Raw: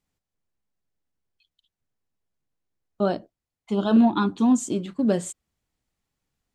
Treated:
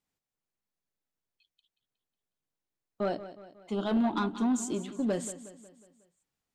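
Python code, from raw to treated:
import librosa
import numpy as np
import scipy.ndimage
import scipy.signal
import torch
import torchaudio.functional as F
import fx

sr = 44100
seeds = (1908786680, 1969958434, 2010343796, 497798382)

y = fx.low_shelf(x, sr, hz=140.0, db=-10.5)
y = 10.0 ** (-17.5 / 20.0) * np.tanh(y / 10.0 ** (-17.5 / 20.0))
y = fx.echo_feedback(y, sr, ms=182, feedback_pct=50, wet_db=-14.0)
y = y * 10.0 ** (-4.0 / 20.0)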